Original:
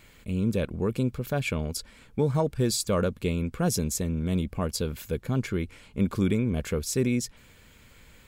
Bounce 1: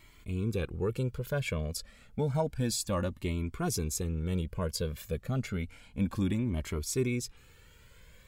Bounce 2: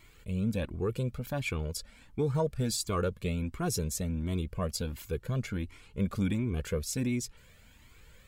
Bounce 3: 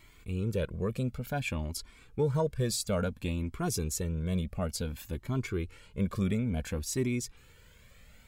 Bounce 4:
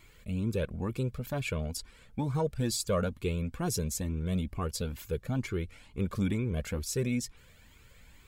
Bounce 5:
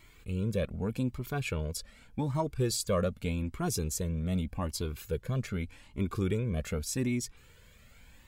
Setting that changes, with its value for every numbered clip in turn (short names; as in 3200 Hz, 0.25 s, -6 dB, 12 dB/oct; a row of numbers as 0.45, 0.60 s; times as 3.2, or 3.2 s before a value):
cascading flanger, rate: 0.3, 1.4, 0.57, 2.2, 0.84 Hz